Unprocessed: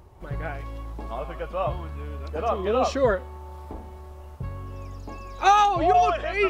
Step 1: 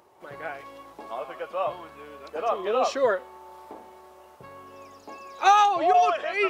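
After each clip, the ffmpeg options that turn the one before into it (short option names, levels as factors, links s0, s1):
-af "highpass=390"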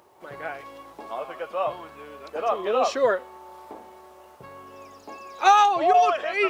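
-af "acrusher=bits=11:mix=0:aa=0.000001,volume=1.19"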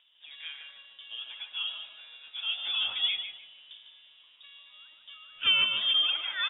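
-filter_complex "[0:a]lowpass=f=3300:t=q:w=0.5098,lowpass=f=3300:t=q:w=0.6013,lowpass=f=3300:t=q:w=0.9,lowpass=f=3300:t=q:w=2.563,afreqshift=-3900,asplit=2[s0][s1];[s1]adelay=150,lowpass=f=1800:p=1,volume=0.668,asplit=2[s2][s3];[s3]adelay=150,lowpass=f=1800:p=1,volume=0.43,asplit=2[s4][s5];[s5]adelay=150,lowpass=f=1800:p=1,volume=0.43,asplit=2[s6][s7];[s7]adelay=150,lowpass=f=1800:p=1,volume=0.43,asplit=2[s8][s9];[s9]adelay=150,lowpass=f=1800:p=1,volume=0.43[s10];[s0][s2][s4][s6][s8][s10]amix=inputs=6:normalize=0,volume=0.376"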